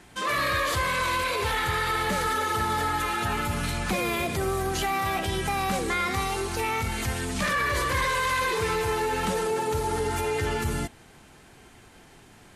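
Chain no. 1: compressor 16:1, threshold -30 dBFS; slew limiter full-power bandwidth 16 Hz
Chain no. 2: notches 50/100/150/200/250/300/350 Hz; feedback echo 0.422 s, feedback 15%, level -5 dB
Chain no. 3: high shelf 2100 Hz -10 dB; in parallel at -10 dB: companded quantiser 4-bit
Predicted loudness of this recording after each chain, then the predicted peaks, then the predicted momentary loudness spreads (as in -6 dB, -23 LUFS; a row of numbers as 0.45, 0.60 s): -36.5, -25.5, -26.5 LUFS; -23.0, -13.0, -12.0 dBFS; 15, 4, 3 LU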